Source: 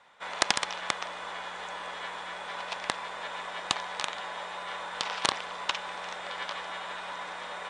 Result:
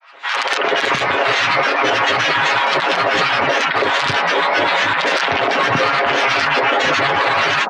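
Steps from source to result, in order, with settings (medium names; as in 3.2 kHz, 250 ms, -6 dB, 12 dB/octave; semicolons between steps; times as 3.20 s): elliptic high-pass 170 Hz; granulator 100 ms, grains 23 per s, pitch spread up and down by 12 st; level rider gain up to 10.5 dB; low-pass 3.7 kHz 12 dB/octave; comb 7.3 ms, depth 50%; three bands offset in time highs, mids, lows 110/380 ms, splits 260/890 Hz; loudness maximiser +27 dB; trim -6 dB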